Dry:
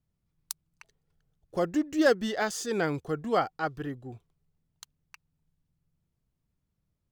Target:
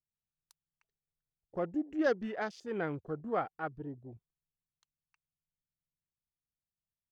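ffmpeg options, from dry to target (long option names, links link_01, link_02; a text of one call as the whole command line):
ffmpeg -i in.wav -af "afwtdn=0.01,aemphasis=mode=reproduction:type=cd,volume=-7dB" out.wav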